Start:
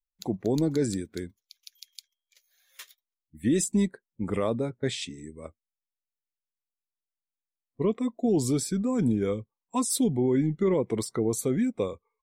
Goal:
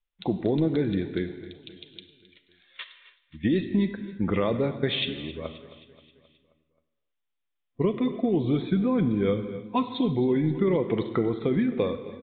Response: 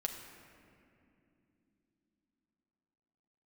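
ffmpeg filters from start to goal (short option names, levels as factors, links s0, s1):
-filter_complex "[0:a]acompressor=threshold=0.0501:ratio=6,aecho=1:1:265|530|795|1060|1325:0.141|0.0777|0.0427|0.0235|0.0129,asplit=2[s0][s1];[1:a]atrim=start_sample=2205,afade=t=out:st=0.38:d=0.01,atrim=end_sample=17199,highshelf=f=2600:g=12[s2];[s1][s2]afir=irnorm=-1:irlink=0,volume=1[s3];[s0][s3]amix=inputs=2:normalize=0,aresample=8000,aresample=44100"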